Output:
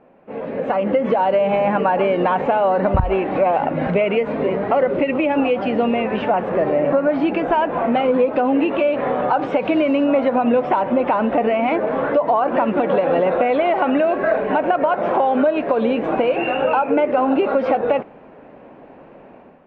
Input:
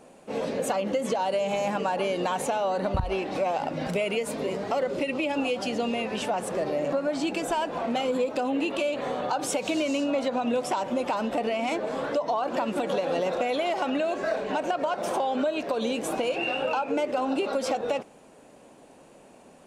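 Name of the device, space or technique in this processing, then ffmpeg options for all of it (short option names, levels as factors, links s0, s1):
action camera in a waterproof case: -af "lowpass=f=2300:w=0.5412,lowpass=f=2300:w=1.3066,dynaudnorm=f=440:g=3:m=3.16" -ar 32000 -c:a aac -b:a 64k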